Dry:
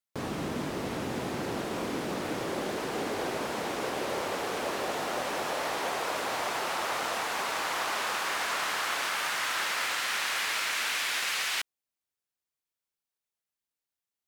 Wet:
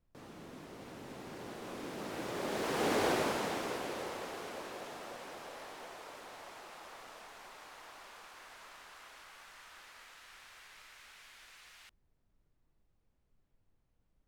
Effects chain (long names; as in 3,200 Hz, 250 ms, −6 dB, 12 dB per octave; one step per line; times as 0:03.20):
source passing by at 0:03.02, 18 m/s, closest 5.5 metres
background noise brown −75 dBFS
level +2 dB